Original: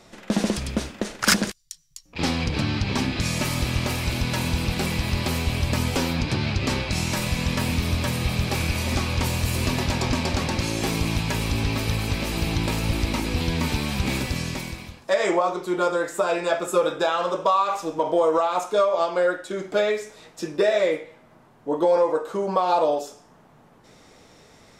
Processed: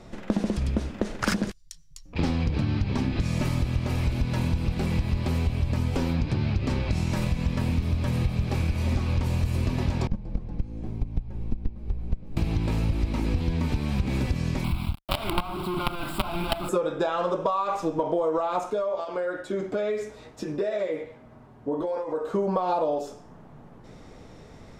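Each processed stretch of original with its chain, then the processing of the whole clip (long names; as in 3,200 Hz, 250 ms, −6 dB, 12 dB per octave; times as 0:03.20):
0:10.07–0:12.37: noise gate −20 dBFS, range −23 dB + frequency shifter −48 Hz + tilt shelving filter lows +9 dB, about 940 Hz
0:14.64–0:16.69: variable-slope delta modulation 64 kbit/s + log-companded quantiser 2 bits + phaser with its sweep stopped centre 1,800 Hz, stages 6
0:18.70–0:22.33: downward compressor 3 to 1, threshold −28 dBFS + notch comb filter 170 Hz
whole clip: spectral tilt −2.5 dB per octave; downward compressor, threshold −23 dBFS; level +1 dB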